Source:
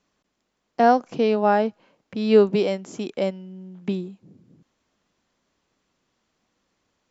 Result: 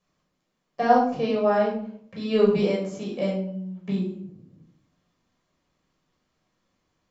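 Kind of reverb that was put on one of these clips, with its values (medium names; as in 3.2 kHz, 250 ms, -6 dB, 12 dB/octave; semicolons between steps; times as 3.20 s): simulated room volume 820 m³, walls furnished, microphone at 5.8 m; trim -9.5 dB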